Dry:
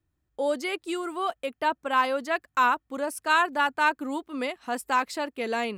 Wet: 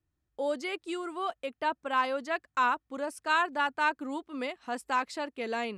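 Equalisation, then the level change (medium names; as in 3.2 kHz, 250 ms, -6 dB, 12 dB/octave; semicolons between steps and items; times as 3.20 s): low-pass 8.3 kHz 12 dB/octave; -4.5 dB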